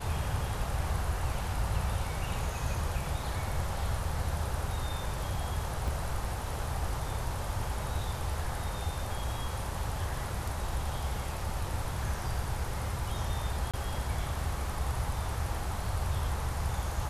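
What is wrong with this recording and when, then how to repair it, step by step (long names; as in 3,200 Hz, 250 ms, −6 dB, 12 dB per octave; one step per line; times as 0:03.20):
0:05.88: drop-out 2.9 ms
0:13.71–0:13.74: drop-out 26 ms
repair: repair the gap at 0:05.88, 2.9 ms
repair the gap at 0:13.71, 26 ms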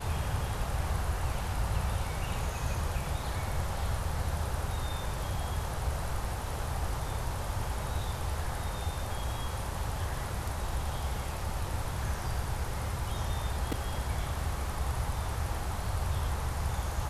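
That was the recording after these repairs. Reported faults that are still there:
none of them is left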